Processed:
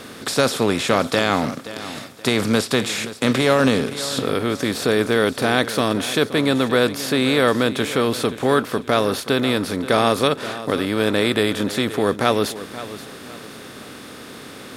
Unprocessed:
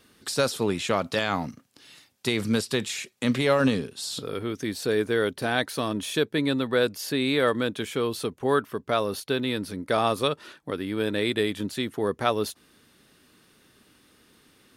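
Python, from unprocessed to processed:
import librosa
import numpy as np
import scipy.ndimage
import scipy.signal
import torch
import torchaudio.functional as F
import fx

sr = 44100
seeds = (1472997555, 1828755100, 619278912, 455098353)

y = fx.bin_compress(x, sr, power=0.6)
y = fx.echo_feedback(y, sr, ms=526, feedback_pct=33, wet_db=-14.5)
y = y * 10.0 ** (3.0 / 20.0)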